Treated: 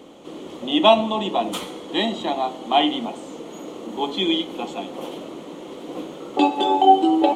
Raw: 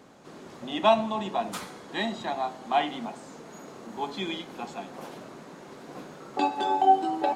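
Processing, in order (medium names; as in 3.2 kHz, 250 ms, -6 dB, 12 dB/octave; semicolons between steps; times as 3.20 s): graphic EQ with 31 bands 125 Hz -10 dB, 315 Hz +10 dB, 500 Hz +7 dB, 1.6 kHz -11 dB, 3.15 kHz +11 dB, 5 kHz -7 dB; trim +5.5 dB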